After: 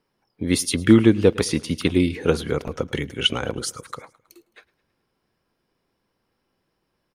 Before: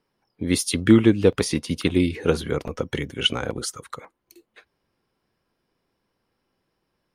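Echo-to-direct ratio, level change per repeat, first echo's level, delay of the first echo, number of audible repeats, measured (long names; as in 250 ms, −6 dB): −21.0 dB, −5.0 dB, −22.5 dB, 107 ms, 3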